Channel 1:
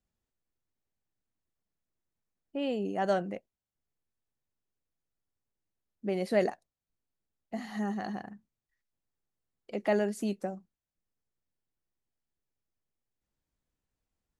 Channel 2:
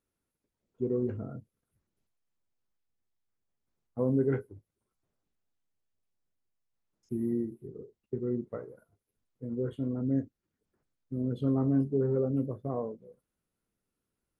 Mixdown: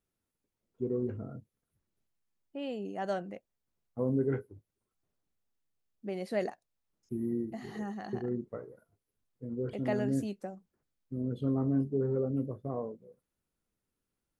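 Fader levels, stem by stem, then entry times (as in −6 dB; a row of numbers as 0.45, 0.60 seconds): −5.5, −2.5 decibels; 0.00, 0.00 seconds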